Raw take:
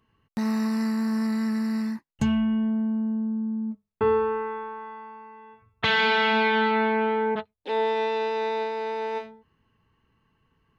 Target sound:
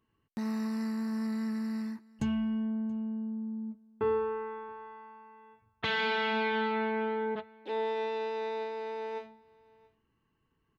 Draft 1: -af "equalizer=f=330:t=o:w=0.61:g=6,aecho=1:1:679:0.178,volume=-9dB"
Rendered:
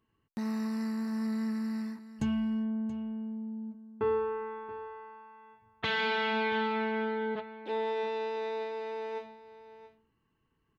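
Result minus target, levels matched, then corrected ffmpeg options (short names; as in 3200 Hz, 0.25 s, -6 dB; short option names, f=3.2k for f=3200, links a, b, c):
echo-to-direct +10 dB
-af "equalizer=f=330:t=o:w=0.61:g=6,aecho=1:1:679:0.0562,volume=-9dB"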